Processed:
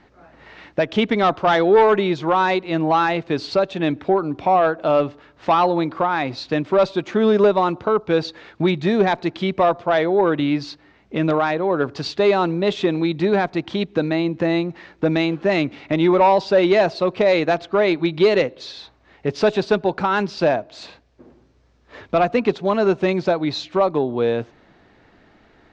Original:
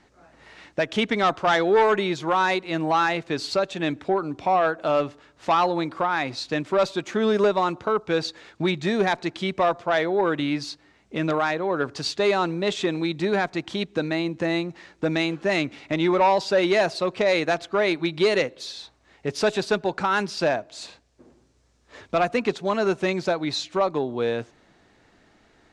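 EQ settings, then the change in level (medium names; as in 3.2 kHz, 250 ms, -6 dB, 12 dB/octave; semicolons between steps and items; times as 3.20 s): dynamic bell 1.7 kHz, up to -4 dB, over -38 dBFS, Q 1.1; distance through air 170 m; +6.0 dB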